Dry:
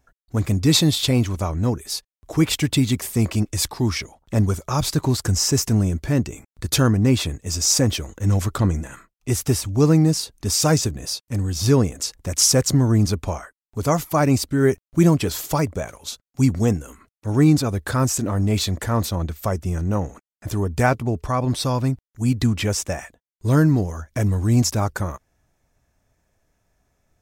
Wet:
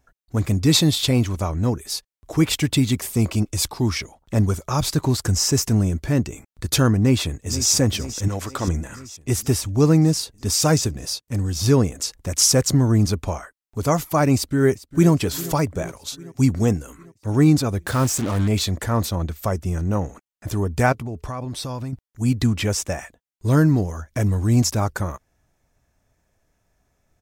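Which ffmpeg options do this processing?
ffmpeg -i in.wav -filter_complex "[0:a]asettb=1/sr,asplit=3[link_01][link_02][link_03];[link_01]atrim=end=3.094[link_04];[link_02]atrim=start=3.09:end=3.82,asetpts=PTS-STARTPTS,afade=type=in:duration=0.004:curve=qsin,afade=type=out:start_time=0.726:duration=0.004:curve=qsin,equalizer=frequency=1800:width=5.8:gain=-7[link_05];[link_03]atrim=start=3.816[link_06];[link_04][link_05]acrossfade=duration=0.004:curve1=hsin:curve2=qsin[link_07];[link_07][link_06]acrossfade=duration=0.004:curve1=qsin:curve2=hsin,asplit=2[link_08][link_09];[link_09]afade=type=in:start_time=6.97:duration=0.01,afade=type=out:start_time=7.72:duration=0.01,aecho=0:1:480|960|1440|1920|2400|2880|3360|3840:0.211349|0.137377|0.0892949|0.0580417|0.0377271|0.0245226|0.0159397|0.0103608[link_10];[link_08][link_10]amix=inputs=2:normalize=0,asettb=1/sr,asplit=3[link_11][link_12][link_13];[link_11]atrim=end=8.284[link_14];[link_12]atrim=start=8.28:end=8.68,asetpts=PTS-STARTPTS,afade=type=in:duration=0.004:curve=qsin,afade=type=out:start_time=0.396:duration=0.004:curve=qsin,bass=frequency=250:gain=-11,treble=frequency=4000:gain=-3[link_15];[link_13]atrim=start=8.676[link_16];[link_14][link_15]acrossfade=duration=0.004:curve1=hsin:curve2=qsin[link_17];[link_17][link_16]acrossfade=duration=0.004:curve1=qsin:curve2=hsin,asplit=2[link_18][link_19];[link_19]afade=type=in:start_time=14.35:duration=0.01,afade=type=out:start_time=15.11:duration=0.01,aecho=0:1:400|800|1200|1600|2000|2400|2800:0.133352|0.0866789|0.0563413|0.0366218|0.0238042|0.0154727|0.0100573[link_20];[link_18][link_20]amix=inputs=2:normalize=0,asettb=1/sr,asplit=3[link_21][link_22][link_23];[link_21]atrim=end=17.864[link_24];[link_22]atrim=start=17.86:end=18.48,asetpts=PTS-STARTPTS,afade=type=in:duration=0.004:curve=qsin,afade=type=out:start_time=0.616:duration=0.004:curve=qsin,acrusher=bits=4:mix=0:aa=0.5[link_25];[link_23]atrim=start=18.476[link_26];[link_24][link_25]acrossfade=duration=0.004:curve1=hsin:curve2=qsin[link_27];[link_27][link_26]acrossfade=duration=0.004:curve1=qsin:curve2=hsin,asettb=1/sr,asplit=3[link_28][link_29][link_30];[link_28]atrim=end=20.924[link_31];[link_29]atrim=start=20.92:end=21.93,asetpts=PTS-STARTPTS,afade=type=in:duration=0.004:curve=qsin,afade=type=out:start_time=1.006:duration=0.004:curve=qsin,acompressor=threshold=-26dB:ratio=6:attack=3.2:release=140:knee=1:detection=peak[link_32];[link_30]atrim=start=21.926[link_33];[link_31][link_32]acrossfade=duration=0.004:curve1=hsin:curve2=qsin[link_34];[link_34][link_33]acrossfade=duration=0.004:curve1=qsin:curve2=hsin" out.wav

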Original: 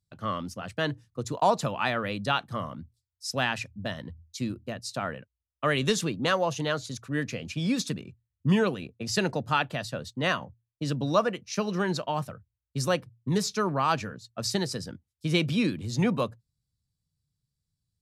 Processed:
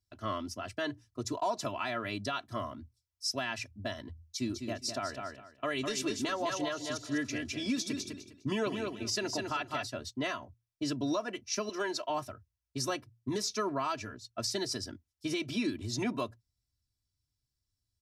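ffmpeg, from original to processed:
ffmpeg -i in.wav -filter_complex "[0:a]asplit=3[link_01][link_02][link_03];[link_01]afade=type=out:start_time=4.42:duration=0.02[link_04];[link_02]aecho=1:1:203|406|609:0.447|0.0938|0.0197,afade=type=in:start_time=4.42:duration=0.02,afade=type=out:start_time=9.86:duration=0.02[link_05];[link_03]afade=type=in:start_time=9.86:duration=0.02[link_06];[link_04][link_05][link_06]amix=inputs=3:normalize=0,asettb=1/sr,asplit=3[link_07][link_08][link_09];[link_07]atrim=end=11.694[link_10];[link_08]atrim=start=11.69:end=12.1,asetpts=PTS-STARTPTS,afade=type=in:duration=0.004:curve=qsin,afade=type=out:start_time=0.406:duration=0.004:curve=qsin,bass=frequency=250:gain=-15,treble=frequency=4000:gain=1[link_11];[link_09]atrim=start=12.096[link_12];[link_10][link_11]acrossfade=duration=0.004:curve1=hsin:curve2=qsin[link_13];[link_13][link_12]acrossfade=duration=0.004:curve1=qsin:curve2=hsin,equalizer=frequency=5500:width_type=o:width=0.36:gain=6.5,aecho=1:1:3:0.96,alimiter=limit=-18dB:level=0:latency=1:release=209,volume=-5dB" out.wav

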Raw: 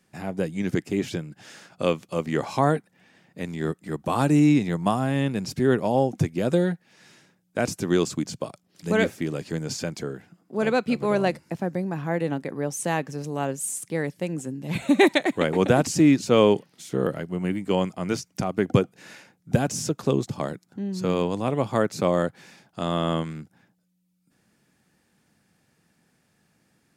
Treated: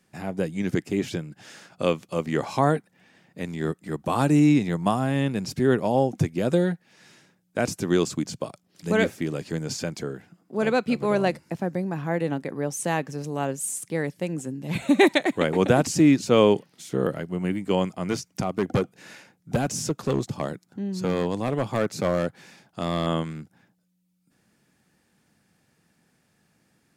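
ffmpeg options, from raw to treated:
ffmpeg -i in.wav -filter_complex "[0:a]asettb=1/sr,asplit=3[link_01][link_02][link_03];[link_01]atrim=end=18.024[link_04];[link_02]atrim=start=18.02:end=23.07,asetpts=PTS-STARTPTS,afade=type=in:duration=0.004:curve=qsin,afade=type=out:start_time=5.046:duration=0.004:curve=qsin,asoftclip=type=hard:threshold=-17dB[link_05];[link_03]atrim=start=23.066[link_06];[link_04][link_05]acrossfade=duration=0.004:curve1=hsin:curve2=qsin[link_07];[link_07][link_06]acrossfade=duration=0.004:curve1=qsin:curve2=hsin" out.wav

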